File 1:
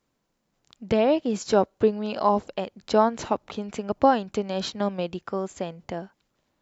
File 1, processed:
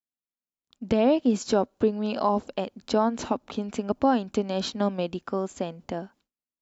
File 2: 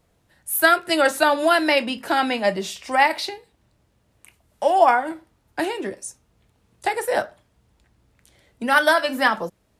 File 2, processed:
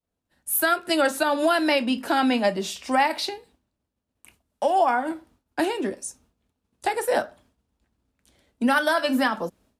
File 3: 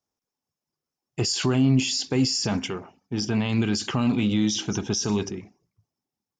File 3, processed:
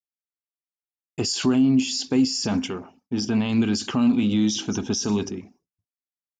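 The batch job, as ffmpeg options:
-af "agate=range=-33dB:threshold=-52dB:ratio=3:detection=peak,equalizer=f=125:t=o:w=0.33:g=-7,equalizer=f=250:t=o:w=0.33:g=8,equalizer=f=2k:t=o:w=0.33:g=-4,alimiter=limit=-11.5dB:level=0:latency=1:release=213"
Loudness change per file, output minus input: -1.5, -3.0, +1.5 LU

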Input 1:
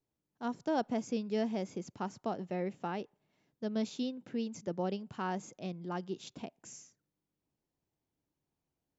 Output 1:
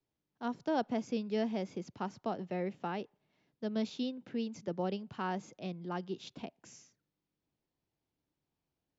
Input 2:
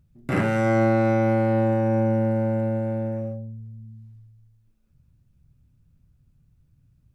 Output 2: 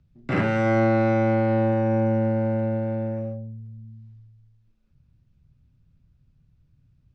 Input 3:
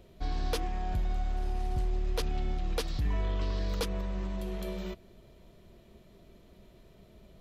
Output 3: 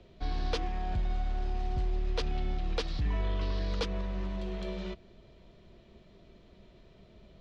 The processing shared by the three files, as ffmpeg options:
-filter_complex "[0:a]aemphasis=mode=production:type=cd,acrossover=split=110|560|5200[a][b][c][d];[d]acrusher=bits=2:mix=0:aa=0.5[e];[a][b][c][e]amix=inputs=4:normalize=0"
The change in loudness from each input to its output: 0.0, -0.5, -0.5 LU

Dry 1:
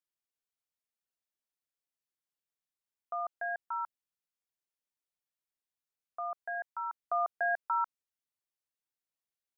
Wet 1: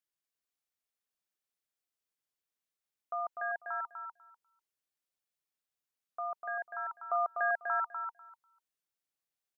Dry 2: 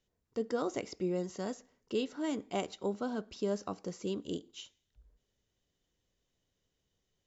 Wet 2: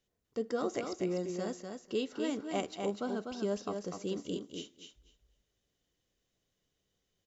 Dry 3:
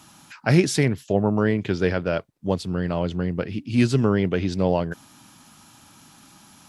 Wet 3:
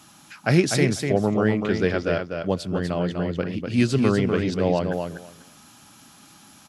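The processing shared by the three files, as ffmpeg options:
-filter_complex "[0:a]lowshelf=f=120:g=-4.5,bandreject=f=930:w=14,asplit=2[a][b];[b]aecho=0:1:247|494|741:0.531|0.0796|0.0119[c];[a][c]amix=inputs=2:normalize=0"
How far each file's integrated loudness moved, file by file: 0.0, 0.0, 0.0 LU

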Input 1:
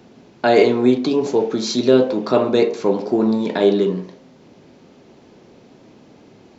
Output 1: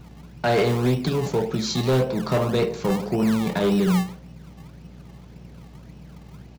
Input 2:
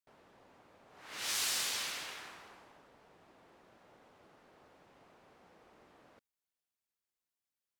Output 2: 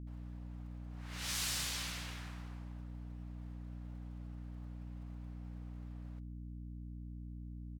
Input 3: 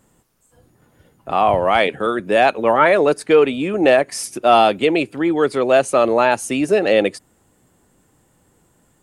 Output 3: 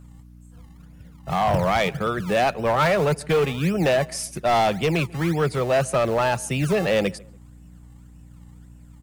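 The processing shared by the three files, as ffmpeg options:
-filter_complex "[0:a]lowshelf=f=210:t=q:w=3:g=8.5,acrossover=split=240[a][b];[a]acrusher=samples=31:mix=1:aa=0.000001:lfo=1:lforange=31:lforate=1.8[c];[c][b]amix=inputs=2:normalize=0,aeval=exprs='val(0)+0.00891*(sin(2*PI*60*n/s)+sin(2*PI*2*60*n/s)/2+sin(2*PI*3*60*n/s)/3+sin(2*PI*4*60*n/s)/4+sin(2*PI*5*60*n/s)/5)':c=same,volume=12dB,asoftclip=hard,volume=-12dB,asplit=2[d][e];[e]adelay=144,lowpass=f=1.7k:p=1,volume=-23dB,asplit=2[f][g];[g]adelay=144,lowpass=f=1.7k:p=1,volume=0.34[h];[d][f][h]amix=inputs=3:normalize=0,volume=-3.5dB"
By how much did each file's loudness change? -5.0, -8.5, -6.0 LU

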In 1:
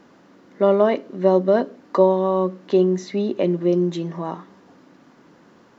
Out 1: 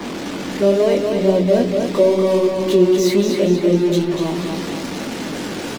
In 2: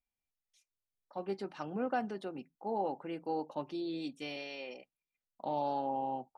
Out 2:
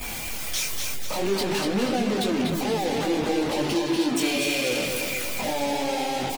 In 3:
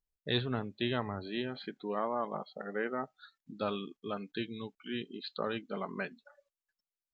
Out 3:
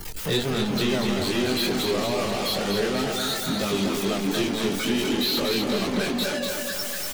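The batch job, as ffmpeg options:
-filter_complex "[0:a]aeval=exprs='val(0)+0.5*0.075*sgn(val(0))':c=same,flanger=delay=20:depth=5:speed=2.2,aecho=1:1:242|484|726|968|1210|1452:0.562|0.287|0.146|0.0746|0.038|0.0194,acrossover=split=270|600|2000[a][b][c][d];[c]acompressor=threshold=-43dB:ratio=6[e];[a][b][e][d]amix=inputs=4:normalize=0,afftdn=nr=16:nf=-45,lowshelf=f=120:g=-6.5,volume=6dB"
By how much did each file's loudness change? +3.0, +13.0, +13.0 LU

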